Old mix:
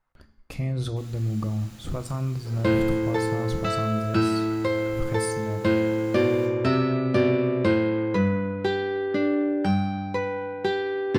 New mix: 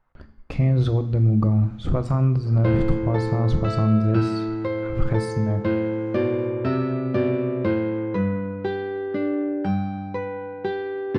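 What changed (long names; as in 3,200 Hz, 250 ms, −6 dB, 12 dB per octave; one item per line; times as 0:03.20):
speech +9.0 dB
first sound −7.0 dB
master: add head-to-tape spacing loss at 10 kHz 24 dB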